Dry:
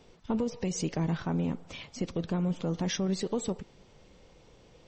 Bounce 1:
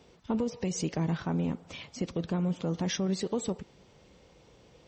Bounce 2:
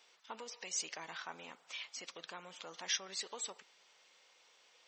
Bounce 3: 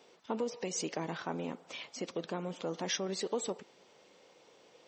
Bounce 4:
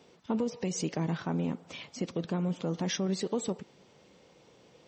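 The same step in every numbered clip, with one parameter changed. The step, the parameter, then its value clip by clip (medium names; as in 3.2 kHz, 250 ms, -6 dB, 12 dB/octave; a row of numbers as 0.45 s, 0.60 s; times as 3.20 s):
high-pass, cutoff frequency: 50 Hz, 1.3 kHz, 380 Hz, 150 Hz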